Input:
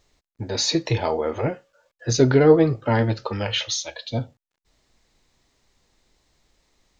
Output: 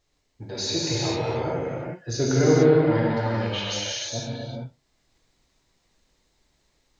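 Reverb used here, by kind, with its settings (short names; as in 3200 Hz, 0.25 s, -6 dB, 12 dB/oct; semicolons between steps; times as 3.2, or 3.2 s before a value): non-linear reverb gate 0.48 s flat, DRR -6.5 dB; gain -9.5 dB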